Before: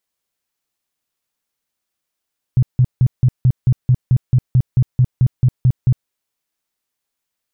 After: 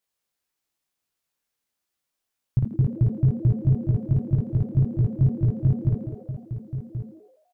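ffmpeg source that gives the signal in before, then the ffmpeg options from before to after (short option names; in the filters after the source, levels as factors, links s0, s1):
-f lavfi -i "aevalsrc='0.398*sin(2*PI*126*mod(t,0.22))*lt(mod(t,0.22),7/126)':d=3.52:s=44100"
-filter_complex "[0:a]asplit=2[s0][s1];[s1]aecho=0:1:1079:0.266[s2];[s0][s2]amix=inputs=2:normalize=0,flanger=delay=18.5:depth=2.9:speed=2,asplit=2[s3][s4];[s4]asplit=6[s5][s6][s7][s8][s9][s10];[s5]adelay=83,afreqshift=100,volume=0.224[s11];[s6]adelay=166,afreqshift=200,volume=0.12[s12];[s7]adelay=249,afreqshift=300,volume=0.0653[s13];[s8]adelay=332,afreqshift=400,volume=0.0351[s14];[s9]adelay=415,afreqshift=500,volume=0.0191[s15];[s10]adelay=498,afreqshift=600,volume=0.0102[s16];[s11][s12][s13][s14][s15][s16]amix=inputs=6:normalize=0[s17];[s3][s17]amix=inputs=2:normalize=0"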